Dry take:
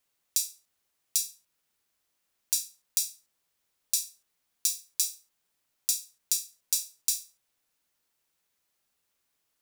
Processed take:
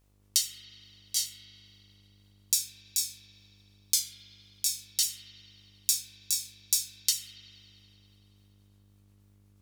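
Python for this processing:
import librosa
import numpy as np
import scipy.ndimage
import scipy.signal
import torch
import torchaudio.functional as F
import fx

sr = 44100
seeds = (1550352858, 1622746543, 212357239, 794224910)

y = fx.pitch_ramps(x, sr, semitones=-4.5, every_ms=419)
y = fx.dmg_buzz(y, sr, base_hz=50.0, harmonics=29, level_db=-69.0, tilt_db=-7, odd_only=False)
y = fx.rev_spring(y, sr, rt60_s=2.8, pass_ms=(30,), chirp_ms=65, drr_db=4.0)
y = F.gain(torch.from_numpy(y), 1.5).numpy()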